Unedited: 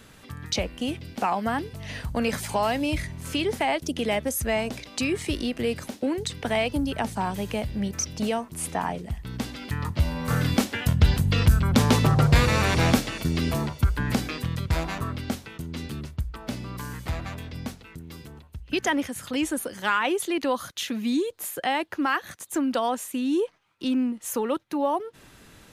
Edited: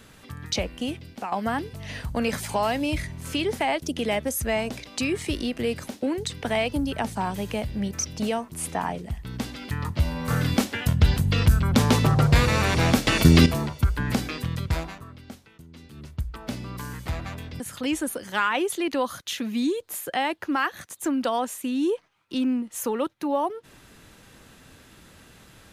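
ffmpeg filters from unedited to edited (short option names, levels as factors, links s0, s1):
-filter_complex "[0:a]asplit=7[s0][s1][s2][s3][s4][s5][s6];[s0]atrim=end=1.32,asetpts=PTS-STARTPTS,afade=t=out:st=0.8:d=0.52:silence=0.334965[s7];[s1]atrim=start=1.32:end=13.072,asetpts=PTS-STARTPTS,afade=t=in:d=0.004:c=hsin:silence=0.334965[s8];[s2]atrim=start=13.068:end=13.462,asetpts=PTS-STARTPTS,volume=3.55[s9];[s3]atrim=start=13.458:end=14.99,asetpts=PTS-STARTPTS,afade=t=out:st=1.232:d=0.3:silence=0.237137[s10];[s4]atrim=start=14.99:end=15.92,asetpts=PTS-STARTPTS,volume=0.237[s11];[s5]atrim=start=15.92:end=17.602,asetpts=PTS-STARTPTS,afade=t=in:d=0.3:silence=0.237137[s12];[s6]atrim=start=19.098[s13];[s7][s8]concat=n=2:v=0:a=1[s14];[s14][s9]acrossfade=d=0.004:c1=hsin:c2=hsin[s15];[s10][s11][s12]concat=n=3:v=0:a=1[s16];[s15][s16]acrossfade=d=0.004:c1=hsin:c2=hsin[s17];[s17][s13]acrossfade=d=0.004:c1=hsin:c2=hsin"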